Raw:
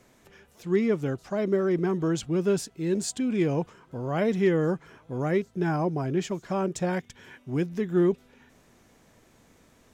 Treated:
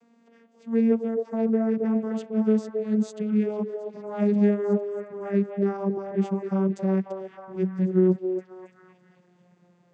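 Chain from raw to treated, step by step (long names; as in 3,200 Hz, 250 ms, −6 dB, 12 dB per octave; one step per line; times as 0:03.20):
vocoder with a gliding carrier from A#3, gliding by −5 semitones
echo through a band-pass that steps 270 ms, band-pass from 550 Hz, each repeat 0.7 octaves, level −2 dB
level +2.5 dB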